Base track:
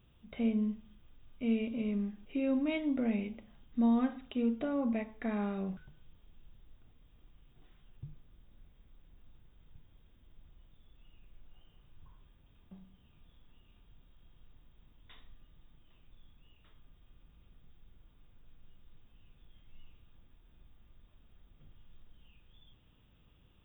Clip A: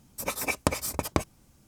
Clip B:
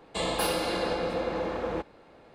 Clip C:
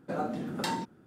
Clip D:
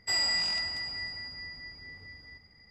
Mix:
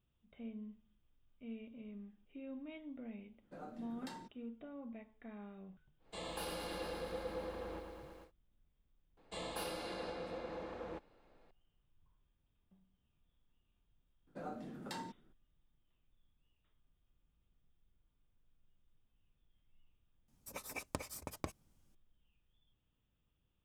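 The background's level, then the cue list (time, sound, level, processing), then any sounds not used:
base track -16.5 dB
3.43 s: add C -18 dB
5.98 s: add B -16 dB, fades 0.10 s + bit-crushed delay 112 ms, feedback 80%, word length 9-bit, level -7 dB
9.17 s: add B -14.5 dB
14.27 s: add C -13 dB
20.28 s: add A -16 dB
not used: D

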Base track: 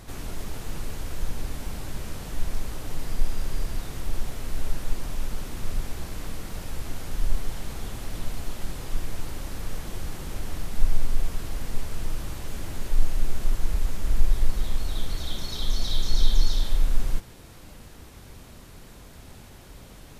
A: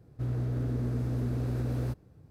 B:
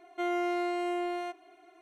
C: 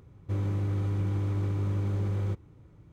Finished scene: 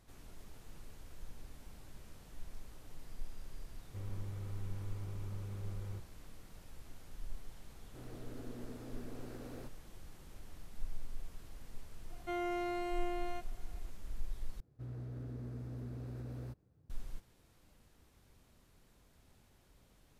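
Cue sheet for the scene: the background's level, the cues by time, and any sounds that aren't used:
base track -20 dB
3.65 s: add C -14.5 dB + peaking EQ 290 Hz -8 dB 0.42 oct
7.75 s: add A -9.5 dB + high-pass 270 Hz
12.09 s: add B -7 dB
14.60 s: replace with A -13.5 dB

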